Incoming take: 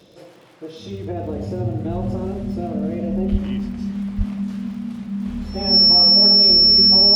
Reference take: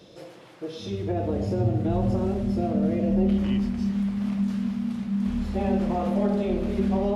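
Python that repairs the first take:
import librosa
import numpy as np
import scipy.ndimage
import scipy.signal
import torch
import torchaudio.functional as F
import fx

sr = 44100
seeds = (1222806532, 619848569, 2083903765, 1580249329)

y = fx.fix_declick_ar(x, sr, threshold=6.5)
y = fx.notch(y, sr, hz=5400.0, q=30.0)
y = fx.highpass(y, sr, hz=140.0, slope=24, at=(3.31, 3.43), fade=0.02)
y = fx.highpass(y, sr, hz=140.0, slope=24, at=(4.17, 4.29), fade=0.02)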